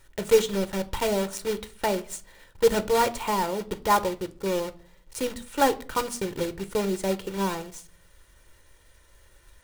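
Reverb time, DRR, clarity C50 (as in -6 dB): 0.50 s, 11.0 dB, 19.5 dB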